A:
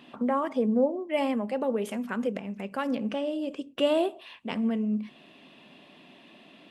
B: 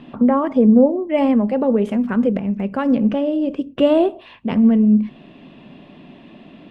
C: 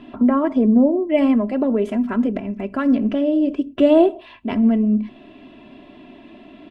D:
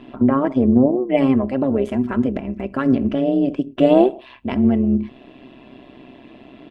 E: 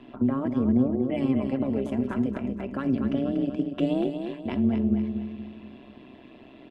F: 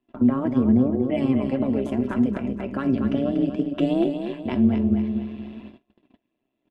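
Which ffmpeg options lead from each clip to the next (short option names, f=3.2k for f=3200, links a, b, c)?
-af "aemphasis=mode=reproduction:type=riaa,volume=7dB"
-af "aecho=1:1:3:0.7,volume=-2dB"
-af "tremolo=f=130:d=0.667,volume=3dB"
-filter_complex "[0:a]acrossover=split=280|3000[a][b][c];[b]acompressor=threshold=-24dB:ratio=6[d];[a][d][c]amix=inputs=3:normalize=0,aecho=1:1:239|478|717|956|1195:0.447|0.192|0.0826|0.0355|0.0153,volume=-6.5dB"
-af "flanger=delay=2.8:depth=7.5:regen=76:speed=0.51:shape=sinusoidal,agate=range=-33dB:threshold=-47dB:ratio=16:detection=peak,volume=8dB"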